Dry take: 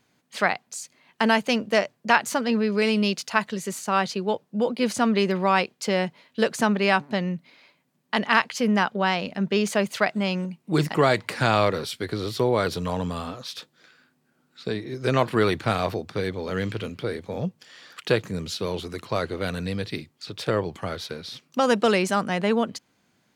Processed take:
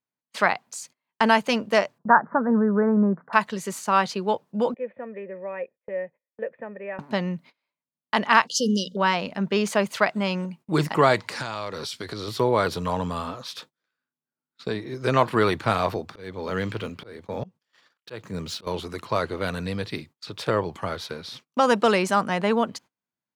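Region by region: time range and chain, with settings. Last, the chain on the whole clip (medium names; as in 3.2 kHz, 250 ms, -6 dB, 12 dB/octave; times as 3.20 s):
1.98–3.33 s: steep low-pass 1.7 kHz 72 dB/octave + resonant low shelf 120 Hz -9.5 dB, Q 3 + level-controlled noise filter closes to 1.2 kHz, open at -17 dBFS
4.74–6.99 s: cascade formant filter e + distance through air 220 m
8.47–8.97 s: brick-wall FIR band-stop 580–2800 Hz + peaking EQ 5.6 kHz +11 dB 1.3 oct + hum notches 60/120/180/240/300 Hz
11.19–12.28 s: peaking EQ 5.5 kHz +8.5 dB 1.3 oct + compression 8:1, threshold -28 dBFS
15.96–18.67 s: median filter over 3 samples + high-pass 57 Hz + slow attack 295 ms
whole clip: gate -45 dBFS, range -28 dB; peaking EQ 980 Hz +6 dB 1.1 oct; band-stop 750 Hz, Q 19; trim -1 dB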